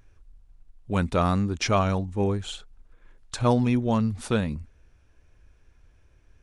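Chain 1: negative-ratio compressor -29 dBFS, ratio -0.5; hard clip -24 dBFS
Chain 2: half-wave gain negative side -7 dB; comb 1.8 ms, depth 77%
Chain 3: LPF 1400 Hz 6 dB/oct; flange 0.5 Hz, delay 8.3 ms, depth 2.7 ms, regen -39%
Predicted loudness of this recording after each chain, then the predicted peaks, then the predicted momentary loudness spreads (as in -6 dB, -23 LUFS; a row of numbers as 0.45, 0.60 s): -33.0, -27.0, -29.0 LUFS; -24.0, -6.5, -14.0 dBFS; 7, 13, 9 LU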